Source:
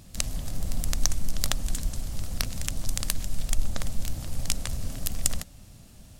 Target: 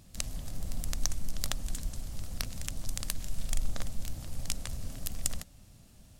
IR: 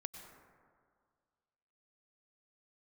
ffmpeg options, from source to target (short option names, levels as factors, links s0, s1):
-filter_complex "[0:a]asettb=1/sr,asplit=3[s0][s1][s2];[s0]atrim=end=3.214[s3];[s1]atrim=start=3.21:end=3.83,asetpts=PTS-STARTPTS,afade=t=in:d=0.004:c=qsin,afade=t=out:st=0.616:d=0.004:c=qsin,asplit=2[s4][s5];[s5]adelay=41,volume=0.596[s6];[s4][s6]amix=inputs=2:normalize=0,atrim=end_sample=27342[s7];[s2]atrim=start=3.826[s8];[s3][s7]acrossfade=d=0.004:c1=hsin:c2=qsin[s9];[s9][s8]acrossfade=d=0.004:c1=qsin:c2=hsin,volume=0.473"